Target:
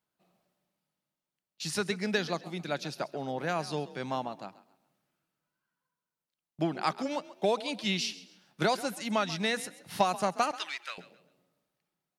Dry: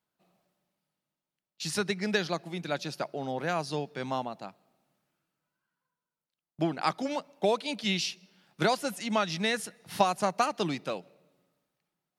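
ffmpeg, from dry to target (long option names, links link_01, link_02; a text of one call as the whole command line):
ffmpeg -i in.wav -filter_complex "[0:a]asettb=1/sr,asplit=3[link_01][link_02][link_03];[link_01]atrim=end=10.514[link_04];[link_02]atrim=start=10.51:end=10.98,asetpts=PTS-STARTPTS,afade=type=in:duration=0.004:curve=qsin,afade=type=out:start_time=0.466:duration=0.004:curve=qsin,highpass=frequency=1700:width_type=q:width=2[link_05];[link_03]atrim=start=10.976[link_06];[link_04][link_05]acrossfade=duration=0.004:curve1=hsin:curve2=qsin[link_07];[link_07][link_06]acrossfade=duration=0.004:curve1=qsin:curve2=hsin,asplit=4[link_08][link_09][link_10][link_11];[link_09]adelay=134,afreqshift=39,volume=-17dB[link_12];[link_10]adelay=268,afreqshift=78,volume=-27.5dB[link_13];[link_11]adelay=402,afreqshift=117,volume=-37.9dB[link_14];[link_08][link_12][link_13][link_14]amix=inputs=4:normalize=0,asplit=2[link_15][link_16];[link_16]asoftclip=type=hard:threshold=-18dB,volume=-10.5dB[link_17];[link_15][link_17]amix=inputs=2:normalize=0,volume=-3.5dB" out.wav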